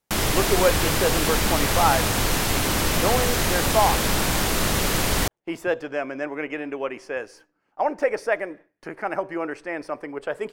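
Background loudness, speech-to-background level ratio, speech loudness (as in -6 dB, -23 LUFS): -22.0 LUFS, -4.5 dB, -26.5 LUFS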